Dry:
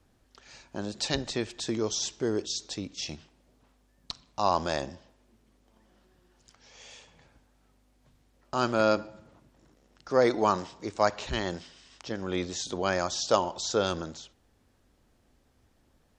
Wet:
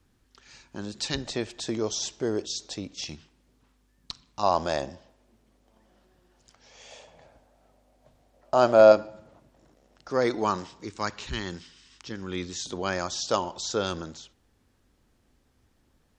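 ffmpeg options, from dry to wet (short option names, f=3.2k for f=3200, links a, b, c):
-af "asetnsamples=n=441:p=0,asendcmd='1.25 equalizer g 3.5;3.04 equalizer g -7.5;4.43 equalizer g 4;6.91 equalizer g 14.5;8.92 equalizer g 6.5;10.1 equalizer g -4.5;10.85 equalizer g -14;12.66 equalizer g -3.5',equalizer=f=640:t=o:w=0.76:g=-8"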